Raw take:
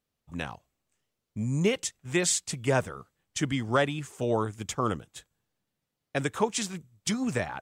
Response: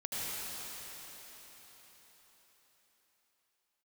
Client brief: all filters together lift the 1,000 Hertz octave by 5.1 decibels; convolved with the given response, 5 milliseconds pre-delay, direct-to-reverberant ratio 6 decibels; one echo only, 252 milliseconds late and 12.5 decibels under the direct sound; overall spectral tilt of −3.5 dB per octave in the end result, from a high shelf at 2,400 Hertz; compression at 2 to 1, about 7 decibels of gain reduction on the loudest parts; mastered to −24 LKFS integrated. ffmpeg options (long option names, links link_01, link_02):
-filter_complex "[0:a]equalizer=frequency=1000:width_type=o:gain=5.5,highshelf=frequency=2400:gain=5,acompressor=threshold=-29dB:ratio=2,aecho=1:1:252:0.237,asplit=2[link_01][link_02];[1:a]atrim=start_sample=2205,adelay=5[link_03];[link_02][link_03]afir=irnorm=-1:irlink=0,volume=-11dB[link_04];[link_01][link_04]amix=inputs=2:normalize=0,volume=7dB"